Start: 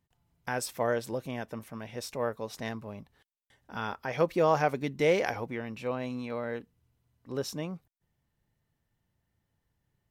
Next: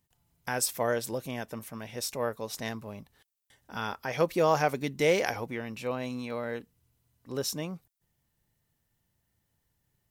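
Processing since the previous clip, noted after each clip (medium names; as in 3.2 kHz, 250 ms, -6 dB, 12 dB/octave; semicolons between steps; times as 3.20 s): treble shelf 4.8 kHz +11 dB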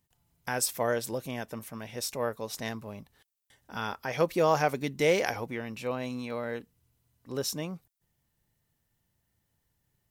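no audible change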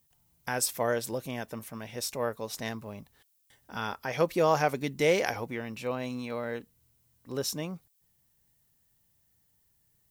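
added noise violet -71 dBFS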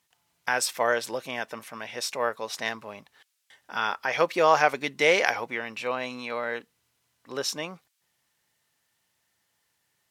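band-pass filter 1.9 kHz, Q 0.55; trim +9 dB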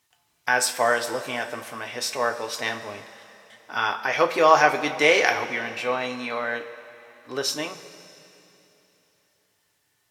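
two-slope reverb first 0.23 s, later 3.2 s, from -18 dB, DRR 3.5 dB; trim +2 dB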